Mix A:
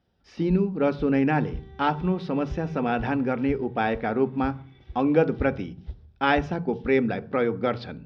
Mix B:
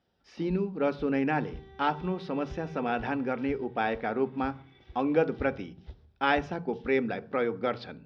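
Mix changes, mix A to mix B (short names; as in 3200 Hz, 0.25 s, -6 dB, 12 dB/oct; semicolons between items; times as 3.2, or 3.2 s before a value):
speech -3.0 dB; master: add low shelf 180 Hz -10 dB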